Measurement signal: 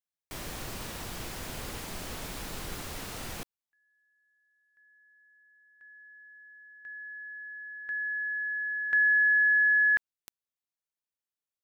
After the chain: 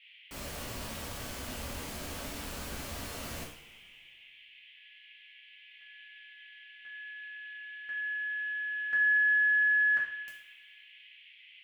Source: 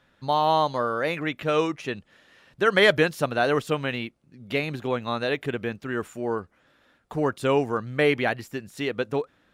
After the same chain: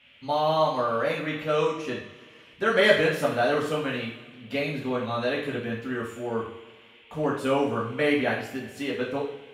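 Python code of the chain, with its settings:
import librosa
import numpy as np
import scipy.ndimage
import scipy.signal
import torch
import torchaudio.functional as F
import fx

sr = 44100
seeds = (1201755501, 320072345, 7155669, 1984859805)

y = fx.dmg_noise_band(x, sr, seeds[0], low_hz=2000.0, high_hz=3300.0, level_db=-54.0)
y = fx.rev_double_slope(y, sr, seeds[1], early_s=0.49, late_s=1.9, knee_db=-17, drr_db=-5.0)
y = F.gain(torch.from_numpy(y), -7.5).numpy()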